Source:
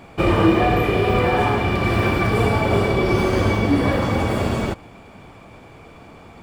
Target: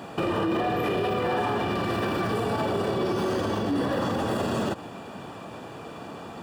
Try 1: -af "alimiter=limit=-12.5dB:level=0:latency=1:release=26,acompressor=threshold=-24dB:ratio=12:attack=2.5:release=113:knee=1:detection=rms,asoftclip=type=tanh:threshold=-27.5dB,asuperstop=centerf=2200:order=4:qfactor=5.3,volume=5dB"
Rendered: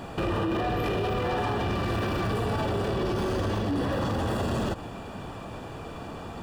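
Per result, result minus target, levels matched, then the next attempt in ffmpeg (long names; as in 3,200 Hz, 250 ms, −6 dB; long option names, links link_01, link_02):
soft clipping: distortion +12 dB; 125 Hz band +5.5 dB
-af "alimiter=limit=-12.5dB:level=0:latency=1:release=26,acompressor=threshold=-24dB:ratio=12:attack=2.5:release=113:knee=1:detection=rms,asoftclip=type=tanh:threshold=-20dB,asuperstop=centerf=2200:order=4:qfactor=5.3,volume=5dB"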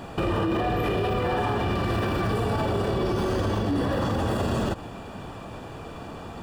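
125 Hz band +5.0 dB
-af "alimiter=limit=-12.5dB:level=0:latency=1:release=26,acompressor=threshold=-24dB:ratio=12:attack=2.5:release=113:knee=1:detection=rms,highpass=150,asoftclip=type=tanh:threshold=-20dB,asuperstop=centerf=2200:order=4:qfactor=5.3,volume=5dB"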